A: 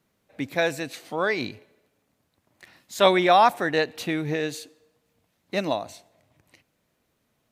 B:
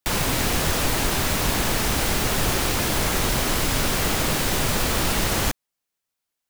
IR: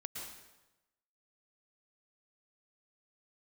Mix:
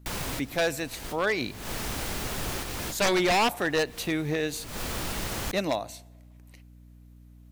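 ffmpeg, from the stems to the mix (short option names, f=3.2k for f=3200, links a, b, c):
-filter_complex "[0:a]highshelf=f=8.7k:g=10,aeval=exprs='val(0)+0.00398*(sin(2*PI*60*n/s)+sin(2*PI*2*60*n/s)/2+sin(2*PI*3*60*n/s)/3+sin(2*PI*4*60*n/s)/4+sin(2*PI*5*60*n/s)/5)':c=same,volume=-1.5dB,asplit=2[a][b];[1:a]volume=-7.5dB[c];[b]apad=whole_len=286440[d];[c][d]sidechaincompress=threshold=-51dB:ratio=16:attack=37:release=168[e];[a][e]amix=inputs=2:normalize=0,aeval=exprs='0.133*(abs(mod(val(0)/0.133+3,4)-2)-1)':c=same"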